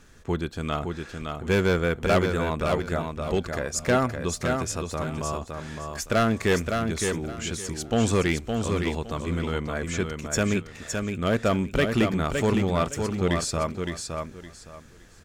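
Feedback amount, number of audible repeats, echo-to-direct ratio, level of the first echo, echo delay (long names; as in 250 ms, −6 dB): 23%, 3, −5.0 dB, −5.0 dB, 564 ms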